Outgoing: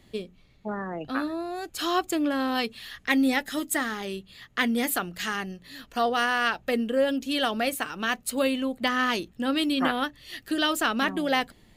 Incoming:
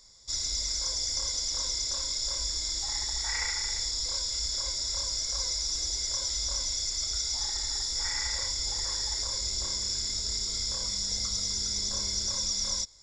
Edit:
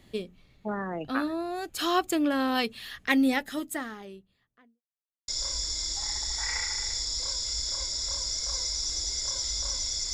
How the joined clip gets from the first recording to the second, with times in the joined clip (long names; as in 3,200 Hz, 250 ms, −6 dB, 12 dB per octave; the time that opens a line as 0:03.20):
outgoing
0:02.92–0:04.82: fade out and dull
0:04.82–0:05.28: silence
0:05.28: continue with incoming from 0:02.14